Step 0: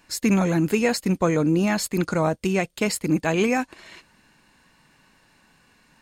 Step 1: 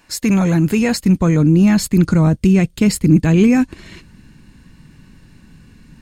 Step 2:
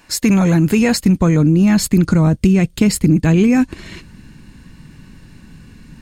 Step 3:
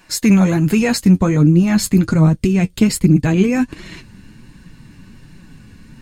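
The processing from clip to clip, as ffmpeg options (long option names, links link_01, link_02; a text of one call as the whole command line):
ffmpeg -i in.wav -filter_complex "[0:a]asubboost=boost=10.5:cutoff=230,asplit=2[link_01][link_02];[link_02]alimiter=limit=-13dB:level=0:latency=1:release=31,volume=3dB[link_03];[link_01][link_03]amix=inputs=2:normalize=0,volume=-3dB" out.wav
ffmpeg -i in.wav -af "acompressor=threshold=-13dB:ratio=5,volume=4dB" out.wav
ffmpeg -i in.wav -af "flanger=delay=5.1:depth=6.2:regen=36:speed=1.3:shape=triangular,volume=3dB" out.wav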